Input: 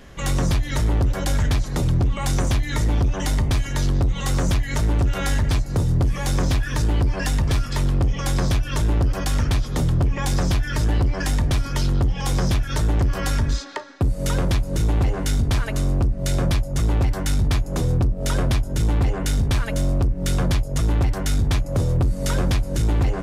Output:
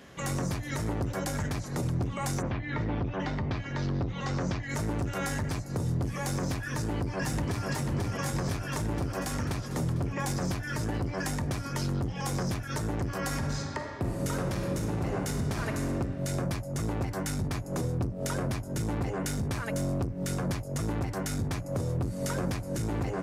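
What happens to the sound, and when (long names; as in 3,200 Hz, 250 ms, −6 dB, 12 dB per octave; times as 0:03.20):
0:02.41–0:04.68: low-pass filter 3,100 Hz → 5,900 Hz 24 dB per octave
0:06.72–0:07.68: delay throw 490 ms, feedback 65%, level −2.5 dB
0:13.22–0:15.90: thrown reverb, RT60 1.8 s, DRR 3 dB
whole clip: high-pass filter 120 Hz 12 dB per octave; dynamic equaliser 3,400 Hz, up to −8 dB, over −49 dBFS, Q 1.8; brickwall limiter −18 dBFS; level −4 dB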